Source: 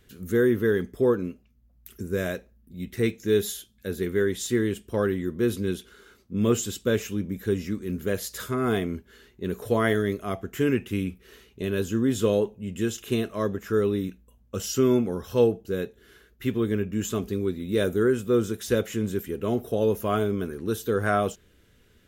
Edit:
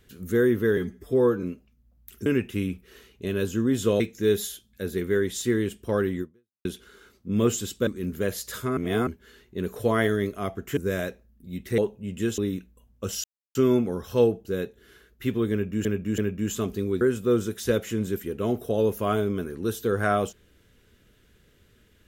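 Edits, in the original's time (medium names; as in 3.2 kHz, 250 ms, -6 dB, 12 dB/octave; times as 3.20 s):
0.77–1.21 s: stretch 1.5×
2.04–3.05 s: swap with 10.63–12.37 s
5.26–5.70 s: fade out exponential
6.92–7.73 s: delete
8.63–8.93 s: reverse
12.97–13.89 s: delete
14.75 s: insert silence 0.31 s
16.72–17.05 s: loop, 3 plays
17.55–18.04 s: delete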